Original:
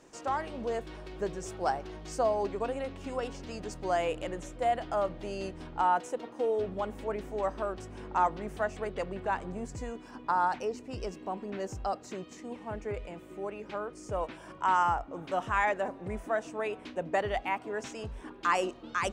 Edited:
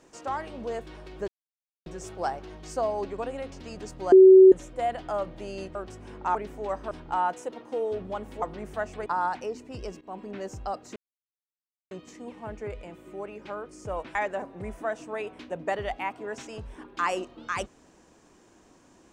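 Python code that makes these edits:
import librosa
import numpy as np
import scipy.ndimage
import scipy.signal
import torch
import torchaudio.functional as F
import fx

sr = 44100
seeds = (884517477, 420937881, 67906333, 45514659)

y = fx.edit(x, sr, fx.insert_silence(at_s=1.28, length_s=0.58),
    fx.cut(start_s=2.94, length_s=0.41),
    fx.bleep(start_s=3.95, length_s=0.4, hz=378.0, db=-8.5),
    fx.swap(start_s=5.58, length_s=1.51, other_s=7.65, other_length_s=0.6),
    fx.cut(start_s=8.89, length_s=1.36),
    fx.fade_in_from(start_s=11.2, length_s=0.26, curve='qsin', floor_db=-17.5),
    fx.insert_silence(at_s=12.15, length_s=0.95),
    fx.cut(start_s=14.39, length_s=1.22), tone=tone)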